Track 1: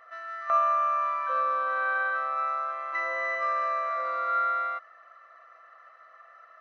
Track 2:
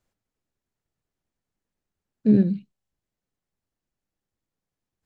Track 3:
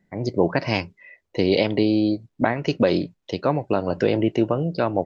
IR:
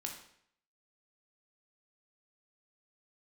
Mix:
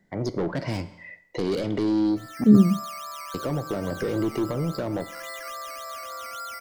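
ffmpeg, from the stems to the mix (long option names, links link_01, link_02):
-filter_complex "[0:a]acrusher=samples=10:mix=1:aa=0.000001:lfo=1:lforange=6:lforate=3.6,adelay=2050,volume=-3dB,asplit=2[link_01][link_02];[link_02]volume=-16.5dB[link_03];[1:a]adelay=200,volume=2dB,asplit=2[link_04][link_05];[link_05]volume=-17dB[link_06];[2:a]lowshelf=frequency=380:gain=-4,asoftclip=type=tanh:threshold=-23dB,volume=1.5dB,asplit=3[link_07][link_08][link_09];[link_07]atrim=end=2.44,asetpts=PTS-STARTPTS,afade=type=out:start_time=2.436:duration=0.004:curve=hsin[link_10];[link_08]atrim=start=2.44:end=3.34,asetpts=PTS-STARTPTS,volume=0[link_11];[link_09]atrim=start=3.34,asetpts=PTS-STARTPTS,afade=type=in:duration=0.004:curve=hsin[link_12];[link_10][link_11][link_12]concat=n=3:v=0:a=1,asplit=3[link_13][link_14][link_15];[link_14]volume=-6.5dB[link_16];[link_15]apad=whole_len=381755[link_17];[link_01][link_17]sidechaincompress=threshold=-29dB:ratio=8:attack=16:release=680[link_18];[3:a]atrim=start_sample=2205[link_19];[link_03][link_06][link_16]amix=inputs=3:normalize=0[link_20];[link_20][link_19]afir=irnorm=-1:irlink=0[link_21];[link_18][link_04][link_13][link_21]amix=inputs=4:normalize=0,acrossover=split=430[link_22][link_23];[link_23]acompressor=threshold=-33dB:ratio=6[link_24];[link_22][link_24]amix=inputs=2:normalize=0,equalizer=frequency=2600:width_type=o:width=0.23:gain=-8.5"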